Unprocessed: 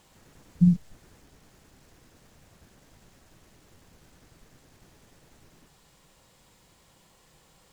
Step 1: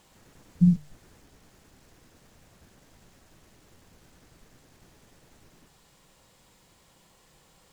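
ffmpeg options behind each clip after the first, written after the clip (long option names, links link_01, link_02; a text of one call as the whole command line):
ffmpeg -i in.wav -af "bandreject=frequency=50:width_type=h:width=6,bandreject=frequency=100:width_type=h:width=6,bandreject=frequency=150:width_type=h:width=6" out.wav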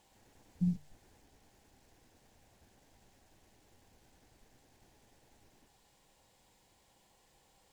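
ffmpeg -i in.wav -af "equalizer=frequency=160:width_type=o:width=0.33:gain=-8,equalizer=frequency=800:width_type=o:width=0.33:gain=6,equalizer=frequency=1250:width_type=o:width=0.33:gain=-7,volume=-8dB" out.wav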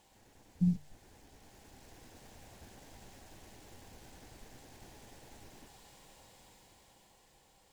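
ffmpeg -i in.wav -af "dynaudnorm=framelen=280:gausssize=11:maxgain=9dB,volume=2dB" out.wav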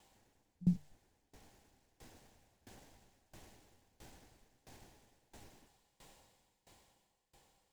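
ffmpeg -i in.wav -af "aeval=exprs='val(0)*pow(10,-23*if(lt(mod(1.5*n/s,1),2*abs(1.5)/1000),1-mod(1.5*n/s,1)/(2*abs(1.5)/1000),(mod(1.5*n/s,1)-2*abs(1.5)/1000)/(1-2*abs(1.5)/1000))/20)':channel_layout=same" out.wav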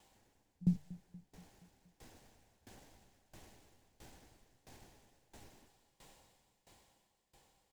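ffmpeg -i in.wav -af "aecho=1:1:237|474|711|948|1185:0.112|0.064|0.0365|0.0208|0.0118" out.wav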